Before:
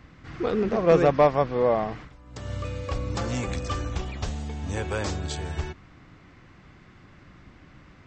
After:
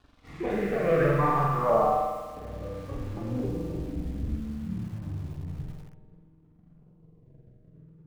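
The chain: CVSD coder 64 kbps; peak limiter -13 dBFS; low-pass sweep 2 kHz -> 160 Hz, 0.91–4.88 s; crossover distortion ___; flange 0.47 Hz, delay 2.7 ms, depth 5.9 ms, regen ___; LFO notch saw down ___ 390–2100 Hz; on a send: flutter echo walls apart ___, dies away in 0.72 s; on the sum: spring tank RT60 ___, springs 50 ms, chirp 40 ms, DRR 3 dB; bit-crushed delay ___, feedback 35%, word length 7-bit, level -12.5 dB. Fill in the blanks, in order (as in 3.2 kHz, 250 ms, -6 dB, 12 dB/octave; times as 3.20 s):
-48 dBFS, -37%, 0.59 Hz, 7.5 m, 1.6 s, 102 ms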